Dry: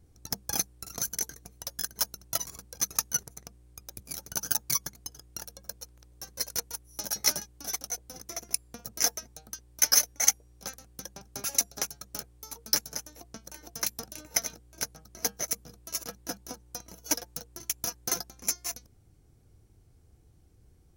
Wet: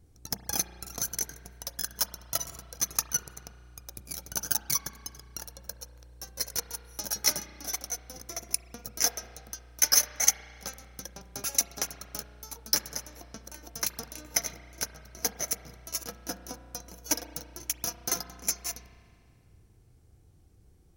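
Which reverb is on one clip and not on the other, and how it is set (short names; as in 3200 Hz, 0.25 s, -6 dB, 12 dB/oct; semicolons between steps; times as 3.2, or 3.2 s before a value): spring tank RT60 2.2 s, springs 33 ms, chirp 40 ms, DRR 10 dB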